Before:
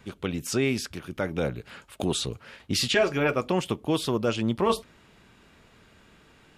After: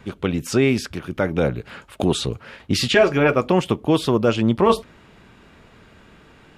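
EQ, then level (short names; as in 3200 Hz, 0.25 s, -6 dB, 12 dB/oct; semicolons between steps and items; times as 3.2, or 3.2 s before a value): high shelf 3500 Hz -8 dB; +8.0 dB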